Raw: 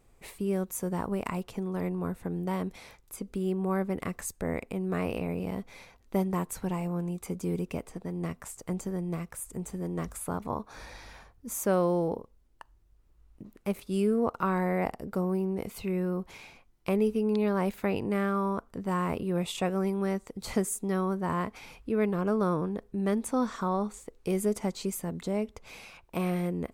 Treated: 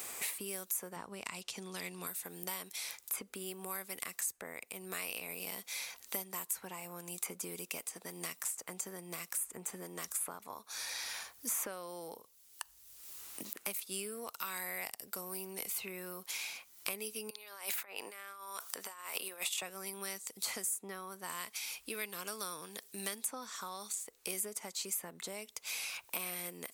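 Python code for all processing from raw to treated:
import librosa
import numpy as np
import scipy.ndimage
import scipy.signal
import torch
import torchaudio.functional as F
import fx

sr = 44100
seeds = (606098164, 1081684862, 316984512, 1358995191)

y = fx.chain(x, sr, fx.lowpass(hz=6400.0, slope=12),
    fx.low_shelf(hz=250.0, db=11.0), at=(0.96, 2.07))
y = fx.chain(y, sr, fx.highpass(hz=530.0, slope=12),
    fx.over_compress(threshold_db=-41.0, ratio=-0.5), at=(17.3, 19.62))
y = np.diff(y, prepend=0.0)
y = fx.band_squash(y, sr, depth_pct=100)
y = F.gain(torch.from_numpy(y), 6.5).numpy()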